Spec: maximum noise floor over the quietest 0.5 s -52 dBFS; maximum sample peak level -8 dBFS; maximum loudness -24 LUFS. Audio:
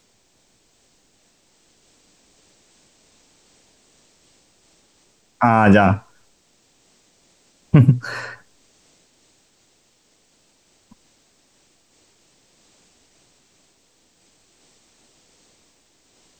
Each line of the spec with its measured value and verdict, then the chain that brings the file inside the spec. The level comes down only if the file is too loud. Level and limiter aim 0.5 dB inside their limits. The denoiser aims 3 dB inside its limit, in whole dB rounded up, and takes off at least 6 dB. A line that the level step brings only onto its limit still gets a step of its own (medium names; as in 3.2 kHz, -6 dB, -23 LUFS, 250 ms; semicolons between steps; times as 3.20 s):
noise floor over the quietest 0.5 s -61 dBFS: pass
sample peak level -2.0 dBFS: fail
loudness -16.5 LUFS: fail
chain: trim -8 dB